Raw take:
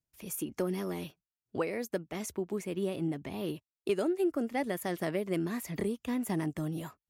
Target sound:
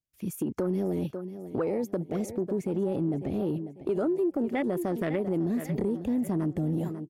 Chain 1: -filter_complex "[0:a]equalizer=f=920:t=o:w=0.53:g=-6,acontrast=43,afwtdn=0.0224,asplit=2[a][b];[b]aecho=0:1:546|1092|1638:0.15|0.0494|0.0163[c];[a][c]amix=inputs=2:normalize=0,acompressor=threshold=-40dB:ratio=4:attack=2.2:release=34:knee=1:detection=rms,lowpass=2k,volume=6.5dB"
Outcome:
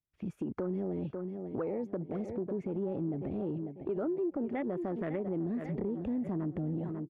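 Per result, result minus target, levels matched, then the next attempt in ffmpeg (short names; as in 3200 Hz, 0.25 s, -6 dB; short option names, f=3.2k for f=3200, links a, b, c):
compressor: peak gain reduction +6 dB; 2000 Hz band -2.5 dB
-filter_complex "[0:a]equalizer=f=920:t=o:w=0.53:g=-6,acontrast=43,afwtdn=0.0224,asplit=2[a][b];[b]aecho=0:1:546|1092|1638:0.15|0.0494|0.0163[c];[a][c]amix=inputs=2:normalize=0,acompressor=threshold=-32dB:ratio=4:attack=2.2:release=34:knee=1:detection=rms,lowpass=2k,volume=6.5dB"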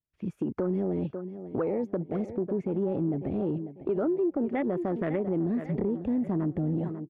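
2000 Hz band -2.5 dB
-filter_complex "[0:a]equalizer=f=920:t=o:w=0.53:g=-6,acontrast=43,afwtdn=0.0224,asplit=2[a][b];[b]aecho=0:1:546|1092|1638:0.15|0.0494|0.0163[c];[a][c]amix=inputs=2:normalize=0,acompressor=threshold=-32dB:ratio=4:attack=2.2:release=34:knee=1:detection=rms,volume=6.5dB"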